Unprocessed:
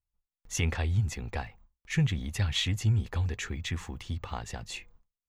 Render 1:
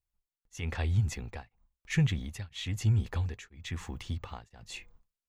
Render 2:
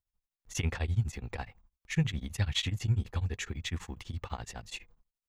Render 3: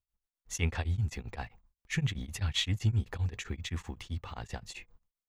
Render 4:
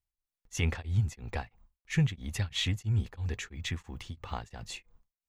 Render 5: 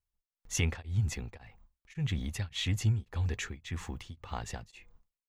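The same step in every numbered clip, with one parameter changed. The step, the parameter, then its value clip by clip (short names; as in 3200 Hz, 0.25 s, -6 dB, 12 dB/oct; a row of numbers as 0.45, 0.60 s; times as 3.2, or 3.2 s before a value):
beating tremolo, nulls at: 1, 12, 7.7, 3, 1.8 Hz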